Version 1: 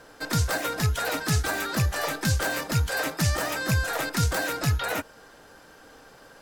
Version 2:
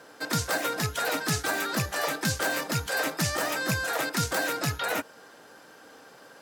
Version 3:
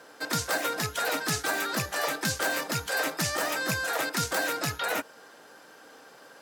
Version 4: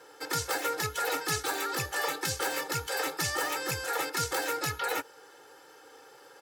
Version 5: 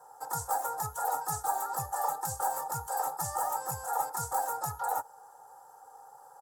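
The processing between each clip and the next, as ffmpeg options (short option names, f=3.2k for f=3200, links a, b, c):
-af "highpass=170"
-af "lowshelf=f=160:g=-8.5"
-af "aecho=1:1:2.3:0.93,volume=-4.5dB"
-af "firequalizer=gain_entry='entry(150,0);entry(310,-17);entry(780,12);entry(2300,-28);entry(7600,3)':delay=0.05:min_phase=1,volume=-3dB"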